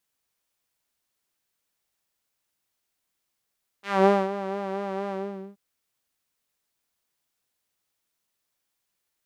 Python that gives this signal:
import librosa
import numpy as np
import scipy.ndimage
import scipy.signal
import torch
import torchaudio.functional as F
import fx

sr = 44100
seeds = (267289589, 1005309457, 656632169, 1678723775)

y = fx.sub_patch_vibrato(sr, seeds[0], note=67, wave='saw', wave2='saw', interval_st=0, detune_cents=19, level2_db=-9.0, sub_db=-0.5, noise_db=-30.0, kind='bandpass', cutoff_hz=240.0, q=1.2, env_oct=3.5, env_decay_s=0.17, env_sustain_pct=40, attack_ms=214.0, decay_s=0.24, sustain_db=-13.5, release_s=0.45, note_s=1.28, lfo_hz=4.3, vibrato_cents=43)